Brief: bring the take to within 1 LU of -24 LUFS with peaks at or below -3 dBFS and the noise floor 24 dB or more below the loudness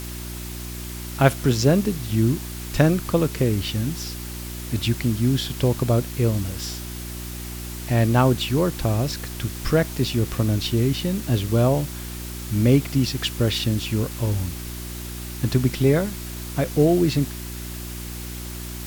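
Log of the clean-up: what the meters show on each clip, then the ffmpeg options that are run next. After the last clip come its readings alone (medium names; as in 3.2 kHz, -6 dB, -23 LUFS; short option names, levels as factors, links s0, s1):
hum 60 Hz; highest harmonic 360 Hz; hum level -32 dBFS; noise floor -33 dBFS; noise floor target -48 dBFS; loudness -23.5 LUFS; peak level -3.0 dBFS; loudness target -24.0 LUFS
-> -af "bandreject=f=60:t=h:w=4,bandreject=f=120:t=h:w=4,bandreject=f=180:t=h:w=4,bandreject=f=240:t=h:w=4,bandreject=f=300:t=h:w=4,bandreject=f=360:t=h:w=4"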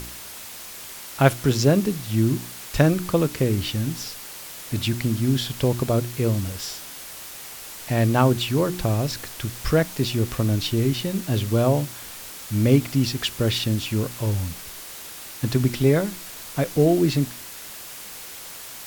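hum not found; noise floor -39 dBFS; noise floor target -47 dBFS
-> -af "afftdn=nr=8:nf=-39"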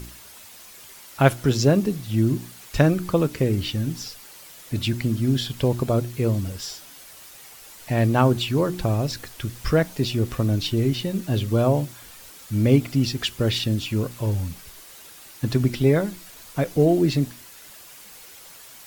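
noise floor -45 dBFS; noise floor target -47 dBFS
-> -af "afftdn=nr=6:nf=-45"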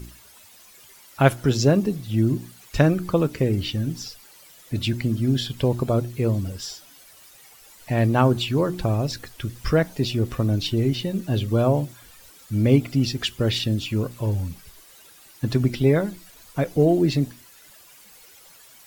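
noise floor -50 dBFS; loudness -23.0 LUFS; peak level -3.0 dBFS; loudness target -24.0 LUFS
-> -af "volume=0.891"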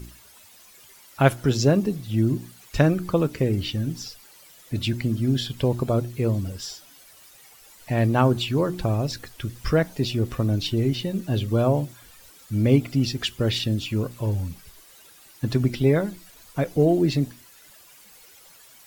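loudness -24.0 LUFS; peak level -4.0 dBFS; noise floor -51 dBFS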